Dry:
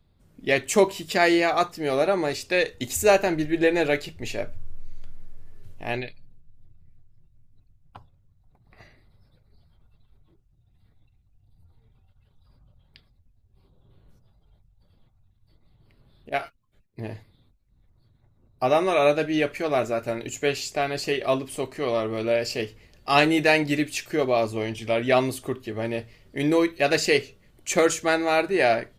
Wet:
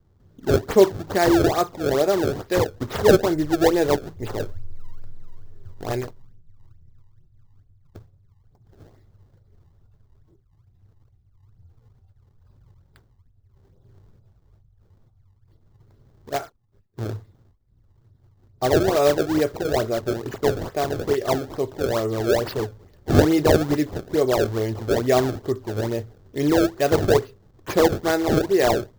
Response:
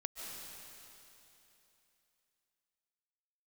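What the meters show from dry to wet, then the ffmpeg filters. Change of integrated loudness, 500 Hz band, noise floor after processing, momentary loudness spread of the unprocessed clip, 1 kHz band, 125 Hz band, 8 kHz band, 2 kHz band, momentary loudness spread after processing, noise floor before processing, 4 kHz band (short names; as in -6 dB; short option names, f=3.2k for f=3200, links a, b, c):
+2.0 dB, +3.0 dB, -60 dBFS, 13 LU, 0.0 dB, +8.0 dB, -1.5 dB, -4.5 dB, 13 LU, -64 dBFS, -1.5 dB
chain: -af "acrusher=samples=26:mix=1:aa=0.000001:lfo=1:lforange=41.6:lforate=2.3,equalizer=f=100:t=o:w=0.67:g=9,equalizer=f=400:t=o:w=0.67:g=6,equalizer=f=2.5k:t=o:w=0.67:g=-8,equalizer=f=10k:t=o:w=0.67:g=-8"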